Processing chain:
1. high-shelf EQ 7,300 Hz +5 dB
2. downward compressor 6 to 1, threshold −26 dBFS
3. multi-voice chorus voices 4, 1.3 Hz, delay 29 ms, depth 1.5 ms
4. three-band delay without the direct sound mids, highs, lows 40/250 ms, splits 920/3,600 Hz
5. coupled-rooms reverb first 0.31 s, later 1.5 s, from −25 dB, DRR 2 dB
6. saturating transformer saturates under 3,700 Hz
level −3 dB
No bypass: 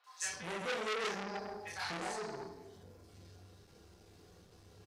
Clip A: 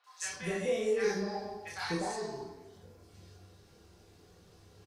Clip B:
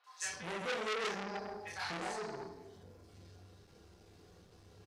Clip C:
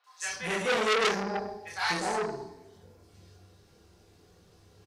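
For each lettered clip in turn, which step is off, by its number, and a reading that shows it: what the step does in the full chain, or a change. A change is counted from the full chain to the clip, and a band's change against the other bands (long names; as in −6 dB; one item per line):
6, change in crest factor −4.5 dB
1, 8 kHz band −1.5 dB
2, average gain reduction 5.0 dB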